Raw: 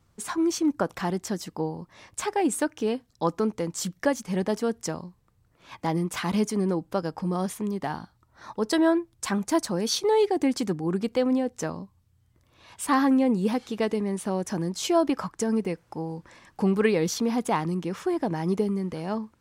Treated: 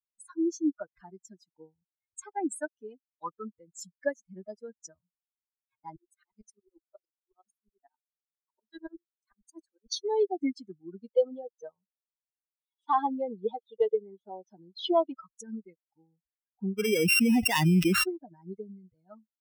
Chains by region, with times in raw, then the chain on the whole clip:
0:05.96–0:09.92: Butterworth high-pass 210 Hz 96 dB per octave + tremolo with a ramp in dB swelling 11 Hz, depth 25 dB
0:11.11–0:15.12: hard clipping −16 dBFS + loudspeaker in its box 130–5,400 Hz, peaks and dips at 260 Hz −4 dB, 450 Hz +8 dB, 830 Hz +7 dB, 1,700 Hz −4 dB, 3,400 Hz +8 dB
0:16.78–0:18.04: samples sorted by size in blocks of 16 samples + high-shelf EQ 3,000 Hz +3.5 dB + envelope flattener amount 100%
whole clip: spectral dynamics exaggerated over time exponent 3; high-shelf EQ 5,200 Hz −5 dB

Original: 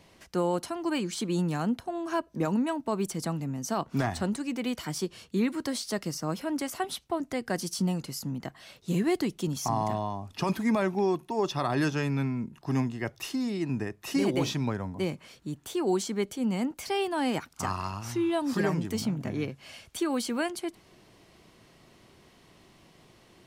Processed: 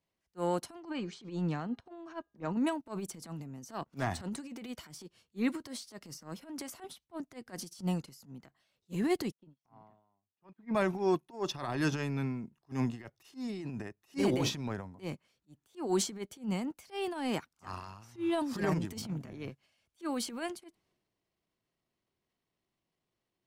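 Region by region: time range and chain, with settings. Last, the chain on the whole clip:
0:00.80–0:02.57: high-frequency loss of the air 130 metres + hum removal 408.5 Hz, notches 27 + one half of a high-frequency compander encoder only
0:09.32–0:10.75: high-pass filter 110 Hz + high-frequency loss of the air 330 metres + expander for the loud parts 2.5 to 1, over −40 dBFS
whole clip: transient designer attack −11 dB, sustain +7 dB; expander for the loud parts 2.5 to 1, over −44 dBFS

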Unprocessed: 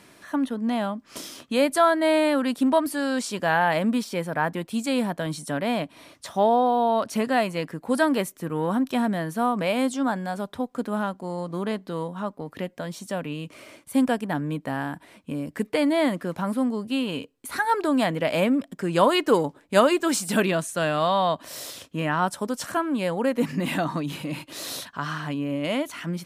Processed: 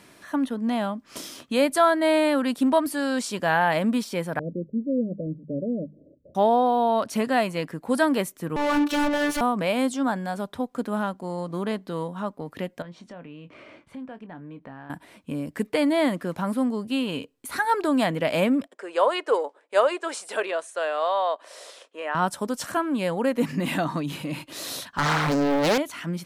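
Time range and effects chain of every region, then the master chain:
0:04.39–0:06.35: Butterworth low-pass 590 Hz 96 dB per octave + mains-hum notches 50/100/150/200 Hz
0:08.56–0:09.41: mid-hump overdrive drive 37 dB, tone 2,500 Hz, clips at −14 dBFS + phases set to zero 292 Hz + multiband upward and downward expander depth 70%
0:12.82–0:14.90: low-pass filter 2,700 Hz + downward compressor 3 to 1, threshold −42 dBFS + double-tracking delay 23 ms −11.5 dB
0:18.67–0:22.15: elliptic band-pass filter 460–9,700 Hz, stop band 50 dB + high-shelf EQ 2,400 Hz −9 dB
0:24.97–0:25.78: low-shelf EQ 82 Hz −10.5 dB + leveller curve on the samples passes 3 + highs frequency-modulated by the lows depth 0.62 ms
whole clip: no processing

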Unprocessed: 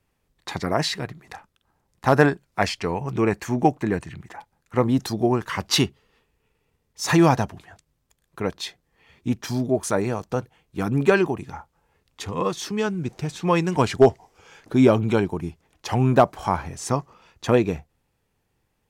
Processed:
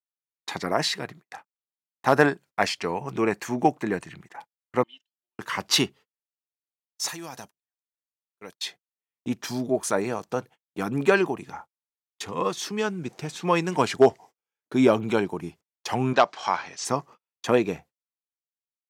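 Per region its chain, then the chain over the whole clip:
0:04.83–0:05.39: resonant band-pass 3,000 Hz, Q 16 + comb filter 3.3 ms, depth 64%
0:07.08–0:08.61: first-order pre-emphasis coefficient 0.8 + downward compressor 10 to 1, threshold −31 dBFS
0:16.13–0:16.85: low-pass filter 5,200 Hz 24 dB per octave + spectral tilt +4 dB per octave
whole clip: noise gate −41 dBFS, range −44 dB; high-pass filter 160 Hz 12 dB per octave; low-shelf EQ 460 Hz −4 dB

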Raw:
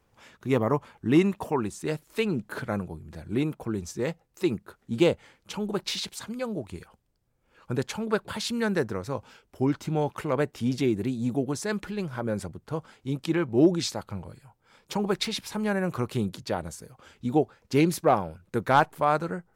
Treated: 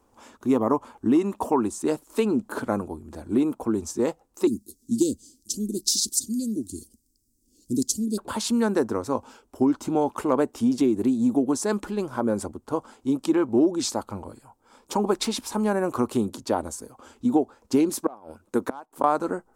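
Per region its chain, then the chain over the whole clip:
0:04.47–0:08.18: Chebyshev band-stop filter 310–4,900 Hz, order 3 + high-shelf EQ 2,000 Hz +11.5 dB
0:17.89–0:19.04: low-shelf EQ 120 Hz −10.5 dB + gate with flip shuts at −16 dBFS, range −27 dB
whole clip: octave-band graphic EQ 125/250/1,000/2,000/4,000/8,000 Hz −7/+11/+7/−8/−3/+6 dB; downward compressor 6 to 1, threshold −18 dBFS; parametric band 170 Hz −12 dB 0.46 octaves; level +2.5 dB

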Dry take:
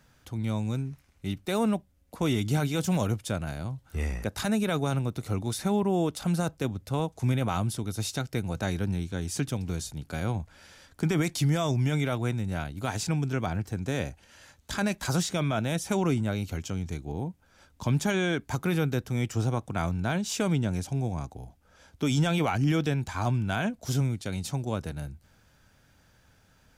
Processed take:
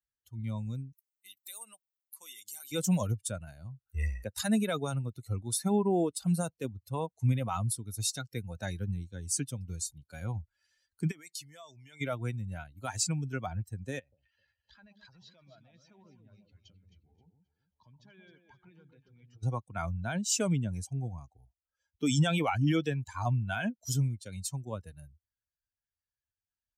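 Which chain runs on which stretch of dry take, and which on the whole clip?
0:00.92–0:02.72: high-pass filter 1,200 Hz 6 dB per octave + high-shelf EQ 5,300 Hz +11.5 dB + downward compressor 2.5 to 1, threshold −40 dBFS
0:11.11–0:12.01: low-shelf EQ 340 Hz −11.5 dB + downward compressor 10 to 1, threshold −34 dBFS
0:13.99–0:19.43: low-pass filter 5,000 Hz 24 dB per octave + downward compressor 3 to 1, threshold −44 dBFS + delay that swaps between a low-pass and a high-pass 132 ms, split 940 Hz, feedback 71%, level −3 dB
whole clip: spectral dynamics exaggerated over time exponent 2; high-pass filter 61 Hz; parametric band 8,500 Hz +9 dB 1.1 octaves; level +1.5 dB

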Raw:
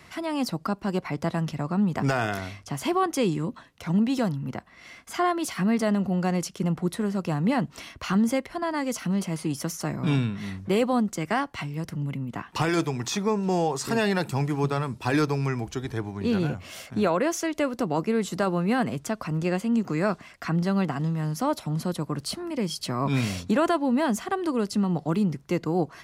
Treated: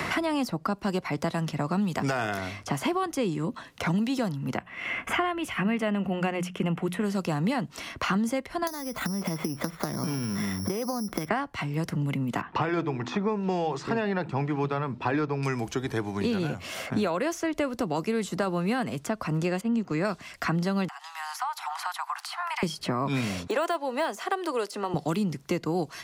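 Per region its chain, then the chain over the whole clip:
0:04.57–0:07.04: high shelf with overshoot 3,500 Hz −7.5 dB, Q 3 + mains-hum notches 60/120/180 Hz
0:08.67–0:11.29: bad sample-rate conversion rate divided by 8×, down filtered, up zero stuff + downward compressor 10 to 1, threshold −22 dBFS
0:12.41–0:15.43: low-pass filter 1,600 Hz + hum removal 82.26 Hz, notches 4
0:19.61–0:20.05: low-pass filter 1,900 Hz 6 dB per octave + noise gate −31 dBFS, range −7 dB
0:20.88–0:22.63: Butterworth high-pass 750 Hz 96 dB per octave + downward compressor 3 to 1, threshold −43 dBFS
0:23.47–0:24.94: de-essing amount 85% + high-pass filter 400 Hz 24 dB per octave
whole clip: low-shelf EQ 210 Hz −4 dB; multiband upward and downward compressor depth 100%; level −1.5 dB

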